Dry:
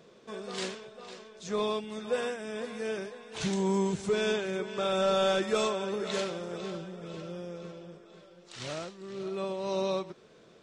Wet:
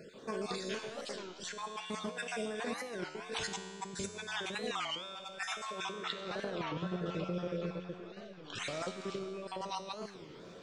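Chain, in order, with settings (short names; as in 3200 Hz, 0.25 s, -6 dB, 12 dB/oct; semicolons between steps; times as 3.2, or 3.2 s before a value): random spectral dropouts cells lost 32%; 5.92–8.56 LPF 4100 Hz 12 dB/oct; negative-ratio compressor -41 dBFS, ratio -1; resonator 90 Hz, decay 1.9 s, mix 80%; record warp 33 1/3 rpm, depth 250 cents; gain +12.5 dB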